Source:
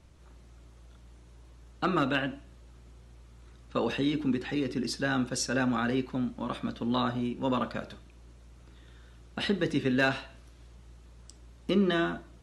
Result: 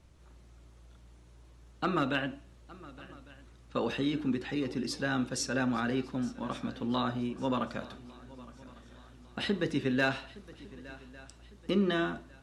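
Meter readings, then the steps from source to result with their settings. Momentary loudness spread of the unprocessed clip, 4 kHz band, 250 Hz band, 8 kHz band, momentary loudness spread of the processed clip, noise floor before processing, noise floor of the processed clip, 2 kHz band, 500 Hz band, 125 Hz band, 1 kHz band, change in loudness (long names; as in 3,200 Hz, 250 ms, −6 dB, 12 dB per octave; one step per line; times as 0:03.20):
10 LU, −2.5 dB, −2.5 dB, −2.5 dB, 20 LU, −54 dBFS, −56 dBFS, −2.5 dB, −2.5 dB, −2.5 dB, −2.5 dB, −2.5 dB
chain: feedback echo with a long and a short gap by turns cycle 1,153 ms, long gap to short 3 to 1, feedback 43%, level −20 dB
level −2.5 dB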